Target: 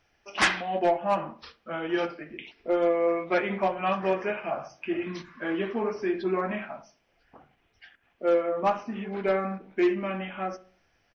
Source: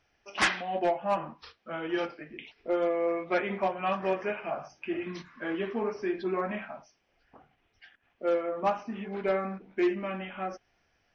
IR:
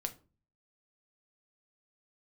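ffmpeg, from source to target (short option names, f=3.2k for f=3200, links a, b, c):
-filter_complex "[0:a]asplit=2[a][b];[b]adelay=70,lowpass=f=1.3k:p=1,volume=-15.5dB,asplit=2[c][d];[d]adelay=70,lowpass=f=1.3k:p=1,volume=0.4,asplit=2[e][f];[f]adelay=70,lowpass=f=1.3k:p=1,volume=0.4,asplit=2[g][h];[h]adelay=70,lowpass=f=1.3k:p=1,volume=0.4[i];[a][c][e][g][i]amix=inputs=5:normalize=0,asplit=2[j][k];[1:a]atrim=start_sample=2205[l];[k][l]afir=irnorm=-1:irlink=0,volume=-7.5dB[m];[j][m]amix=inputs=2:normalize=0"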